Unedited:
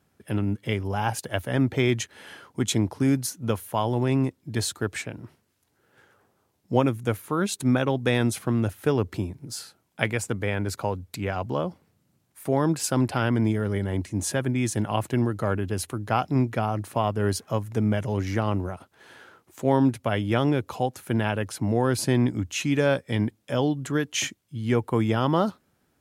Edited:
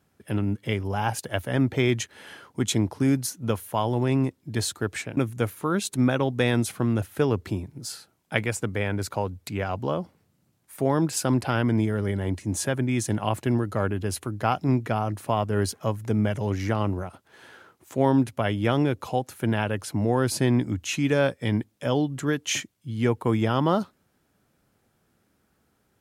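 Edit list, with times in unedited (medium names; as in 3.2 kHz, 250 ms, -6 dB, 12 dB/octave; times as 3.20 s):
5.17–6.84 s: delete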